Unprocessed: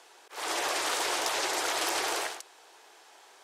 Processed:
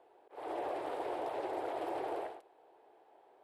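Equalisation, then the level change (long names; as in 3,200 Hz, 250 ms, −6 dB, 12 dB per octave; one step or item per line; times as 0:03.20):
high-frequency loss of the air 420 metres
low-shelf EQ 490 Hz −3 dB
flat-topped bell 2,600 Hz −15.5 dB 2.9 octaves
+1.0 dB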